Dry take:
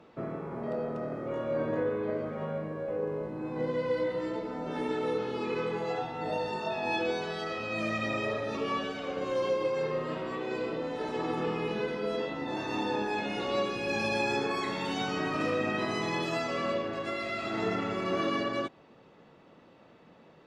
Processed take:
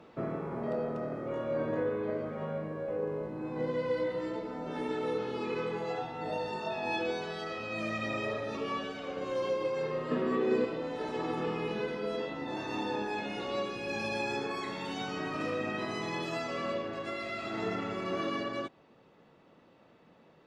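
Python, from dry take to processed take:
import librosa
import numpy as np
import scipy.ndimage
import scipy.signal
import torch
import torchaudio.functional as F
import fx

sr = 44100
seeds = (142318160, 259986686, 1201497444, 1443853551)

y = fx.rider(x, sr, range_db=5, speed_s=2.0)
y = fx.small_body(y, sr, hz=(240.0, 400.0, 1200.0, 1700.0), ring_ms=45, db=14, at=(10.11, 10.65))
y = y * 10.0 ** (-3.0 / 20.0)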